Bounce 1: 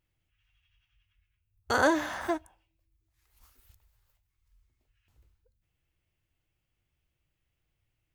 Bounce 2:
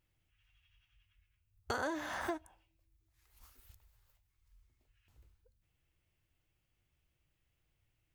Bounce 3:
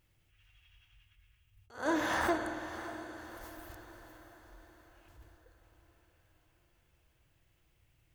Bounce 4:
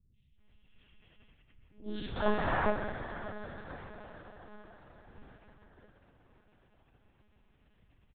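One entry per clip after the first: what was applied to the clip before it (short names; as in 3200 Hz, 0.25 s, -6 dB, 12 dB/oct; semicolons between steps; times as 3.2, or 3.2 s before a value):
compressor 5:1, threshold -35 dBFS, peak gain reduction 14.5 dB
diffused feedback echo 0.607 s, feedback 51%, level -13 dB; spring tank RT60 2.3 s, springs 51 ms, chirp 35 ms, DRR 8 dB; attack slew limiter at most 170 dB/s; gain +7.5 dB
in parallel at -6 dB: decimation with a swept rate 27×, swing 60% 0.42 Hz; on the sum: three bands offset in time lows, highs, mids 0.14/0.38 s, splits 290/2800 Hz; monotone LPC vocoder at 8 kHz 210 Hz; gain +1.5 dB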